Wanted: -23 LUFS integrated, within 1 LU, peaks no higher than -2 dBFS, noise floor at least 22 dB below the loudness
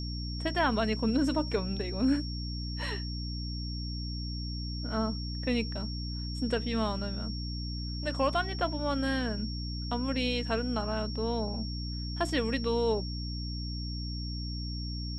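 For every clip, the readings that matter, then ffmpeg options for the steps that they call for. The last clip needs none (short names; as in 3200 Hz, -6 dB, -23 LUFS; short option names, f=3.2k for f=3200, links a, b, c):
hum 60 Hz; harmonics up to 300 Hz; hum level -34 dBFS; steady tone 5500 Hz; tone level -41 dBFS; loudness -32.5 LUFS; peak -15.5 dBFS; loudness target -23.0 LUFS
-> -af "bandreject=f=60:t=h:w=6,bandreject=f=120:t=h:w=6,bandreject=f=180:t=h:w=6,bandreject=f=240:t=h:w=6,bandreject=f=300:t=h:w=6"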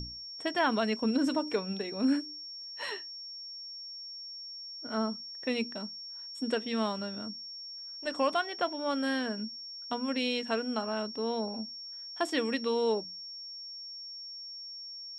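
hum none; steady tone 5500 Hz; tone level -41 dBFS
-> -af "bandreject=f=5.5k:w=30"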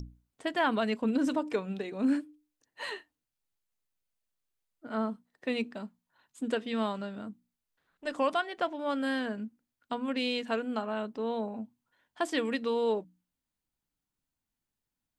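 steady tone none; loudness -32.5 LUFS; peak -16.0 dBFS; loudness target -23.0 LUFS
-> -af "volume=9.5dB"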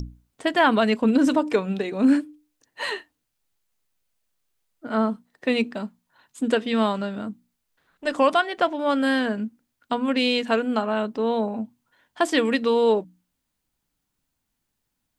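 loudness -23.0 LUFS; peak -6.5 dBFS; noise floor -79 dBFS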